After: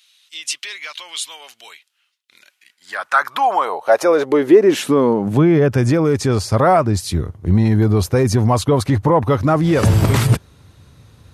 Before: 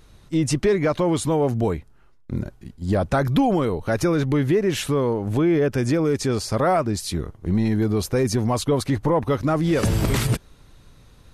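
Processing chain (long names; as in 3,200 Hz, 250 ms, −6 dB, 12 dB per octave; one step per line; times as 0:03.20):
dynamic equaliser 940 Hz, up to +5 dB, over −33 dBFS, Q 0.87
high-pass filter sweep 3,000 Hz → 88 Hz, 0:02.34–0:05.89
level +3 dB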